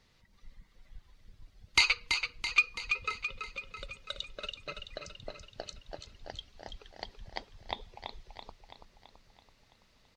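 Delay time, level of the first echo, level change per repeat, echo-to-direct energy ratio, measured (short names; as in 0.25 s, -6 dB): 0.332 s, -6.5 dB, -5.0 dB, -5.0 dB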